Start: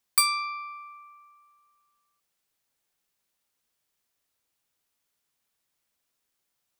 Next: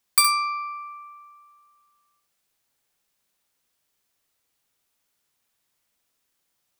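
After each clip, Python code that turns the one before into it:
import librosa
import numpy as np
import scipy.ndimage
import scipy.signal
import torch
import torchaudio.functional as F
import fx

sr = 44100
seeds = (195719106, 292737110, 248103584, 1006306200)

y = fx.room_early_taps(x, sr, ms=(35, 68), db=(-17.0, -7.0))
y = y * 10.0 ** (3.5 / 20.0)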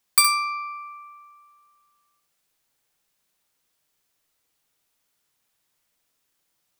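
y = fx.room_shoebox(x, sr, seeds[0], volume_m3=2600.0, walls='furnished', distance_m=0.52)
y = y * 10.0 ** (1.0 / 20.0)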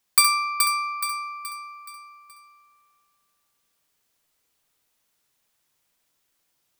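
y = fx.echo_feedback(x, sr, ms=424, feedback_pct=42, wet_db=-5.5)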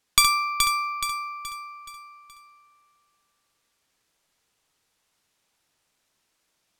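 y = np.interp(np.arange(len(x)), np.arange(len(x))[::2], x[::2])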